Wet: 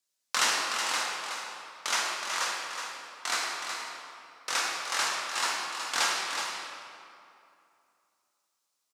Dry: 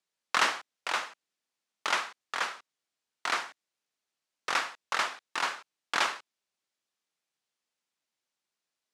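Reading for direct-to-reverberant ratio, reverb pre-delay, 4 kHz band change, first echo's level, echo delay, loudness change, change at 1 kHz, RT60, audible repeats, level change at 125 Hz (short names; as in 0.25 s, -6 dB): -4.5 dB, 4 ms, +5.0 dB, -7.0 dB, 0.371 s, +1.5 dB, +0.5 dB, 2.6 s, 1, n/a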